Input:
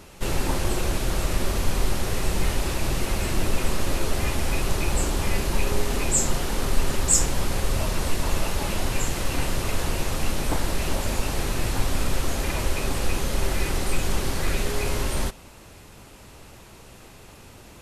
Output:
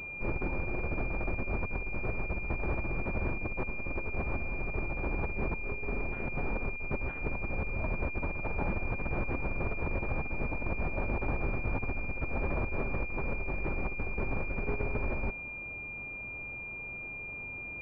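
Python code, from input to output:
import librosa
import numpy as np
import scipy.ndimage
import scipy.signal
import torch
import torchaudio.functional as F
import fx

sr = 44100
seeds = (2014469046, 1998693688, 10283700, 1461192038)

y = fx.over_compress(x, sr, threshold_db=-26.0, ratio=-1.0)
y = fx.pwm(y, sr, carrier_hz=2400.0)
y = F.gain(torch.from_numpy(y), -6.5).numpy()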